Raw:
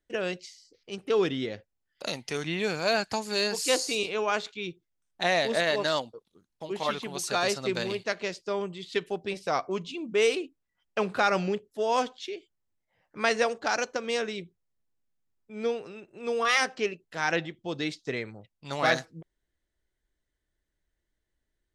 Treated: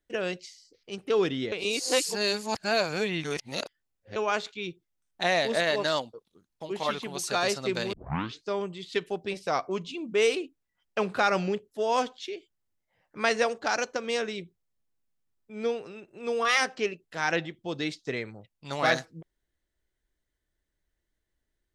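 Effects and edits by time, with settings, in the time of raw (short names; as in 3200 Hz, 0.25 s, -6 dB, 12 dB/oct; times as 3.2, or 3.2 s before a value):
1.52–4.16 reverse
7.93 tape start 0.55 s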